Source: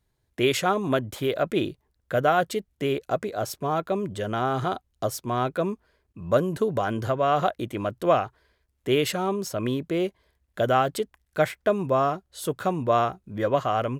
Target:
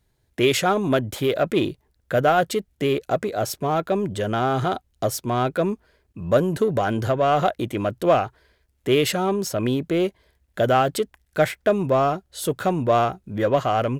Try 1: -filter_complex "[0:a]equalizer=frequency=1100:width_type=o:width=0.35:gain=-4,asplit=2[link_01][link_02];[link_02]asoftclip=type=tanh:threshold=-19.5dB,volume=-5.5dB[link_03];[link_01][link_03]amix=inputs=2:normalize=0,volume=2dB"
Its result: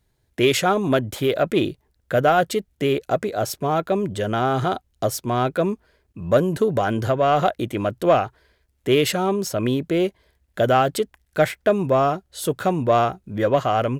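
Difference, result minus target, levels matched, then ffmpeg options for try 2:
soft clipping: distortion −6 dB
-filter_complex "[0:a]equalizer=frequency=1100:width_type=o:width=0.35:gain=-4,asplit=2[link_01][link_02];[link_02]asoftclip=type=tanh:threshold=-27dB,volume=-5.5dB[link_03];[link_01][link_03]amix=inputs=2:normalize=0,volume=2dB"

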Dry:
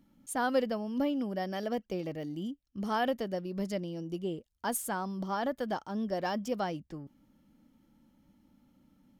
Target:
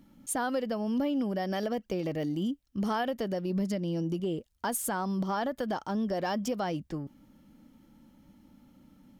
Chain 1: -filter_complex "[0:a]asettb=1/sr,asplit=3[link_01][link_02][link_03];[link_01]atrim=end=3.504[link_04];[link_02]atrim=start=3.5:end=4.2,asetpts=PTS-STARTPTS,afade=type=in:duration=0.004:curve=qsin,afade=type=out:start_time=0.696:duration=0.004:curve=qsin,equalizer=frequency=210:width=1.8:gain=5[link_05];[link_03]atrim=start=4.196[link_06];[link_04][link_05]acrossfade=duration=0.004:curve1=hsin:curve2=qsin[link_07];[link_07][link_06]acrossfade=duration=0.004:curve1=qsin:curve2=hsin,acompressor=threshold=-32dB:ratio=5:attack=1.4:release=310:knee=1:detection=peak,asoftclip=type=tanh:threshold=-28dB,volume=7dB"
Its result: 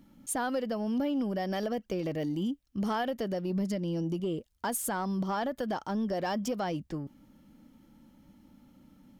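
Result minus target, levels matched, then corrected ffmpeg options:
soft clipping: distortion +15 dB
-filter_complex "[0:a]asettb=1/sr,asplit=3[link_01][link_02][link_03];[link_01]atrim=end=3.504[link_04];[link_02]atrim=start=3.5:end=4.2,asetpts=PTS-STARTPTS,afade=type=in:duration=0.004:curve=qsin,afade=type=out:start_time=0.696:duration=0.004:curve=qsin,equalizer=frequency=210:width=1.8:gain=5[link_05];[link_03]atrim=start=4.196[link_06];[link_04][link_05]acrossfade=duration=0.004:curve1=hsin:curve2=qsin[link_07];[link_07][link_06]acrossfade=duration=0.004:curve1=qsin:curve2=hsin,acompressor=threshold=-32dB:ratio=5:attack=1.4:release=310:knee=1:detection=peak,asoftclip=type=tanh:threshold=-20dB,volume=7dB"

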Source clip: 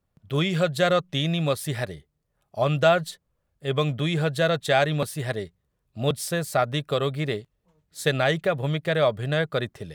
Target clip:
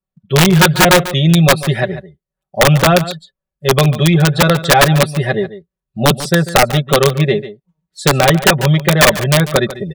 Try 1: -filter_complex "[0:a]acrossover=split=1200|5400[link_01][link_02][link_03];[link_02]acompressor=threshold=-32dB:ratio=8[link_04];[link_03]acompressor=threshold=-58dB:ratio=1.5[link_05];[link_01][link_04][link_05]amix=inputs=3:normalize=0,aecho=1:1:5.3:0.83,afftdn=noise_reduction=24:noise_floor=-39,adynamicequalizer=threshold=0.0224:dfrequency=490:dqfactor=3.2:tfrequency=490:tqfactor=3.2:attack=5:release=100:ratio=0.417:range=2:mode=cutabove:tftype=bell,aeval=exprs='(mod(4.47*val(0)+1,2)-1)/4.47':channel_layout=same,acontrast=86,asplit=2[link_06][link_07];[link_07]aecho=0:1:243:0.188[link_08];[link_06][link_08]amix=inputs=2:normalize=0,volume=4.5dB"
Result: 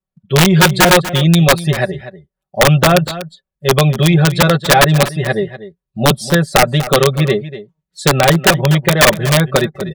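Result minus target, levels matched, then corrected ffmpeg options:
echo 99 ms late
-filter_complex "[0:a]acrossover=split=1200|5400[link_01][link_02][link_03];[link_02]acompressor=threshold=-32dB:ratio=8[link_04];[link_03]acompressor=threshold=-58dB:ratio=1.5[link_05];[link_01][link_04][link_05]amix=inputs=3:normalize=0,aecho=1:1:5.3:0.83,afftdn=noise_reduction=24:noise_floor=-39,adynamicequalizer=threshold=0.0224:dfrequency=490:dqfactor=3.2:tfrequency=490:tqfactor=3.2:attack=5:release=100:ratio=0.417:range=2:mode=cutabove:tftype=bell,aeval=exprs='(mod(4.47*val(0)+1,2)-1)/4.47':channel_layout=same,acontrast=86,asplit=2[link_06][link_07];[link_07]aecho=0:1:144:0.188[link_08];[link_06][link_08]amix=inputs=2:normalize=0,volume=4.5dB"

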